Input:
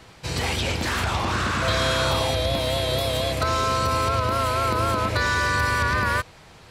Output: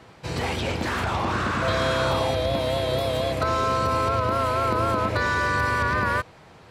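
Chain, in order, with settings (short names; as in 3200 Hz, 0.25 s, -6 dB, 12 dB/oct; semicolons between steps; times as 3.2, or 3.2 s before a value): HPF 120 Hz 6 dB/oct; high shelf 2300 Hz -10.5 dB; gain +2 dB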